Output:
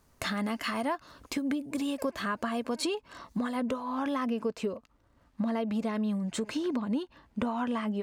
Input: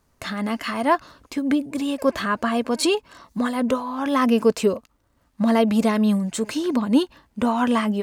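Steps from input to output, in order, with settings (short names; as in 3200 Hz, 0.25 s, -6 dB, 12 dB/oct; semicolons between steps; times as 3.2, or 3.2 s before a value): high shelf 6500 Hz +2 dB, from 2.75 s -6 dB, from 4.25 s -12 dB; compressor 6:1, threshold -29 dBFS, peak gain reduction 15.5 dB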